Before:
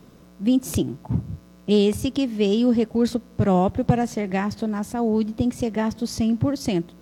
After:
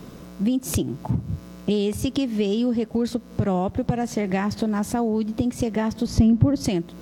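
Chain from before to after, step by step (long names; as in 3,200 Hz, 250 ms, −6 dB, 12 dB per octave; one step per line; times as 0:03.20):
downward compressor 6 to 1, threshold −29 dBFS, peak gain reduction 15 dB
0:06.06–0:06.64: spectral tilt −2.5 dB per octave
level +8.5 dB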